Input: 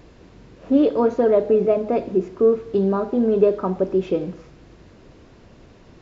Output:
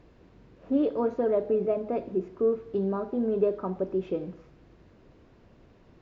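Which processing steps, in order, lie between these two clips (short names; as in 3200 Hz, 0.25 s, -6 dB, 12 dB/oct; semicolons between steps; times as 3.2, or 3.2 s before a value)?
LPF 2900 Hz 6 dB/oct; gain -8.5 dB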